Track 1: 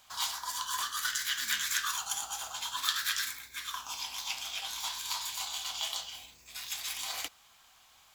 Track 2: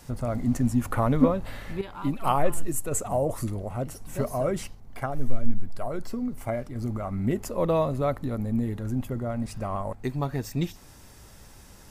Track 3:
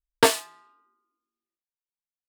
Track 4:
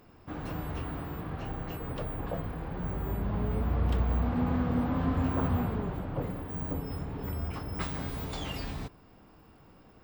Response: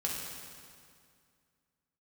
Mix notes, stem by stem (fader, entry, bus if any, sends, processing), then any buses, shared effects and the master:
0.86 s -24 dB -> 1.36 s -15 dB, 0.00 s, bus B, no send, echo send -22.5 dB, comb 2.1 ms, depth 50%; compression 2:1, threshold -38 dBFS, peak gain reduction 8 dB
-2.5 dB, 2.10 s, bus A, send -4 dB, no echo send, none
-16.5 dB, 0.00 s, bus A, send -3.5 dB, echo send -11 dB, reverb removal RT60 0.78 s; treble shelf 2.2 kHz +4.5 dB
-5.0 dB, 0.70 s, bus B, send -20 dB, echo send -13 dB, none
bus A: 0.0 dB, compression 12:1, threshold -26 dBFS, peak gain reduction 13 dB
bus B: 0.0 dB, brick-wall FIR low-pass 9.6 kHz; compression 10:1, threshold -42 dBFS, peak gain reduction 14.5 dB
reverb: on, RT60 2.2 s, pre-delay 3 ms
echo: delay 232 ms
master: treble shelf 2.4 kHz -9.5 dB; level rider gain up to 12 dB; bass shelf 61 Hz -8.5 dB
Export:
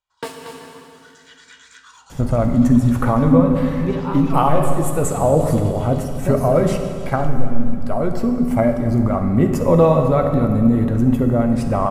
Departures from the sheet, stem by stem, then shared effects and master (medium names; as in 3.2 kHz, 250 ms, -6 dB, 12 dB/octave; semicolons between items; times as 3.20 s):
stem 4: muted; master: missing bass shelf 61 Hz -8.5 dB